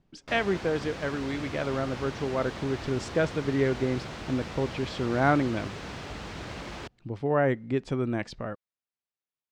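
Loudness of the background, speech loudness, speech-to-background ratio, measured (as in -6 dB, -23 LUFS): -39.0 LUFS, -29.5 LUFS, 9.5 dB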